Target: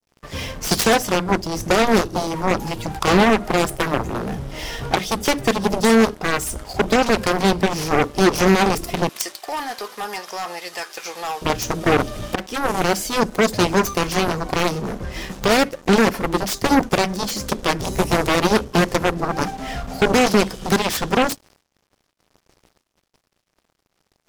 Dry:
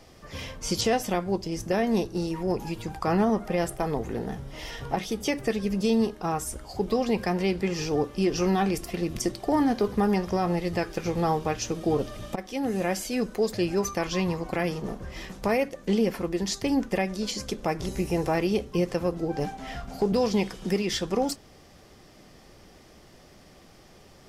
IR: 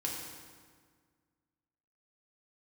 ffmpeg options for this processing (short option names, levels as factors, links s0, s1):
-filter_complex "[0:a]aeval=exprs='sgn(val(0))*max(abs(val(0))-0.00398,0)':c=same,adynamicequalizer=threshold=0.00631:dfrequency=2000:dqfactor=0.77:tfrequency=2000:tqfactor=0.77:attack=5:release=100:ratio=0.375:range=2.5:mode=cutabove:tftype=bell,asettb=1/sr,asplit=3[s0][s1][s2];[s0]atrim=end=9.094[s3];[s1]atrim=start=9.09:end=11.42,asetpts=PTS-STARTPTS,afade=t=in:d=0.004:c=qsin,afade=t=out:st=2.326:d=0.004:c=qsin,highpass=1200[s4];[s2]atrim=start=11.416[s5];[s3][s4]acrossfade=d=0.004:c1=hsin:c2=qsin[s6];[s6][s5]acrossfade=d=0.004:c1=qsin:c2=hsin,aeval=exprs='0.178*(cos(1*acos(clip(val(0)/0.178,-1,1)))-cos(1*PI/2))+0.0708*(cos(7*acos(clip(val(0)/0.178,-1,1)))-cos(7*PI/2))':c=same,agate=range=0.0224:threshold=0.00251:ratio=3:detection=peak,volume=2.37"